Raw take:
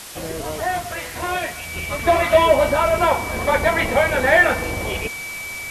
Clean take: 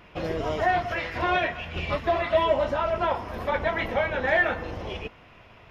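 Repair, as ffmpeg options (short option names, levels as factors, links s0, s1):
-af "bandreject=f=2300:w=30,afwtdn=0.018,asetnsamples=n=441:p=0,asendcmd='1.99 volume volume -8dB',volume=1"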